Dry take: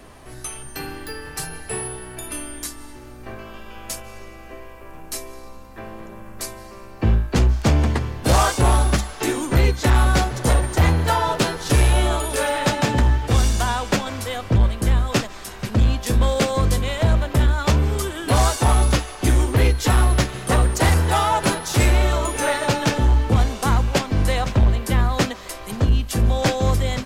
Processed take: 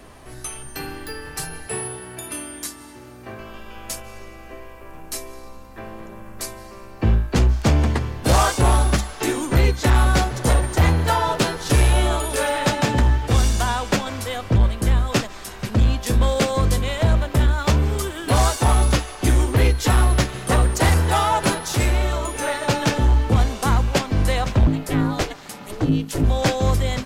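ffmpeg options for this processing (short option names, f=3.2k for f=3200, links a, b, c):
-filter_complex "[0:a]asettb=1/sr,asplit=3[a][b][c];[a]atrim=end=1.674[d];[b]atrim=start=1.67:end=3.4,asetpts=PTS-STARTPTS,afade=t=in:d=0.004:c=qsin,afade=t=out:st=1.726:d=0.004:c=qsin,highpass=f=78:w=0.5412,highpass=f=78:w=1.3066[e];[c]atrim=start=3.396[f];[d][e]acrossfade=d=0.004:c1=hsin:c2=qsin[g];[g][f]acrossfade=d=0.004:c1=qsin:c2=hsin,asettb=1/sr,asplit=3[h][i][j];[h]atrim=end=17.234[k];[i]atrim=start=17.23:end=18.86,asetpts=PTS-STARTPTS,afade=t=in:d=0.004:c=qsin,afade=t=out:st=1.626:d=0.004:c=qsin,aeval=exprs='sgn(val(0))*max(abs(val(0))-0.00531,0)':c=same[l];[j]atrim=start=18.856[m];[k][l]acrossfade=d=0.004:c1=hsin:c2=qsin[n];[n][m]acrossfade=d=0.004:c1=qsin:c2=hsin,asettb=1/sr,asplit=3[o][p][q];[o]atrim=end=24.674[r];[p]atrim=start=24.67:end=26.24,asetpts=PTS-STARTPTS,afade=t=in:d=0.004:c=qsin,afade=t=out:st=1.566:d=0.004:c=qsin,aeval=exprs='val(0)*sin(2*PI*210*n/s)':c=same[s];[q]atrim=start=26.236[t];[r][s]acrossfade=d=0.004:c1=hsin:c2=qsin[u];[u][t]acrossfade=d=0.004:c1=qsin:c2=hsin,asplit=3[v][w][x];[v]atrim=end=21.752[y];[w]atrim=start=21.748:end=22.682,asetpts=PTS-STARTPTS,volume=-3dB[z];[x]atrim=start=22.678[aa];[y][z]acrossfade=d=0.004:c1=hsin:c2=hsin[ab];[ab][aa]acrossfade=d=0.004:c1=hsin:c2=hsin"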